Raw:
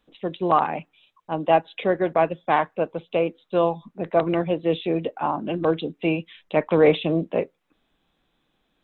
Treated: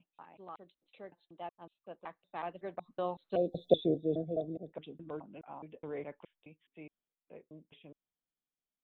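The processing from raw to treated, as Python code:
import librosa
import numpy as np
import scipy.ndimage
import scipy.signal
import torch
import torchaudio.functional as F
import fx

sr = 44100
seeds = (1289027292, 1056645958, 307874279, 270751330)

y = fx.block_reorder(x, sr, ms=198.0, group=5)
y = fx.doppler_pass(y, sr, speed_mps=20, closest_m=1.9, pass_at_s=3.68)
y = fx.spec_box(y, sr, start_s=3.36, length_s=1.37, low_hz=770.0, high_hz=3400.0, gain_db=-30)
y = F.gain(torch.from_numpy(y), 2.0).numpy()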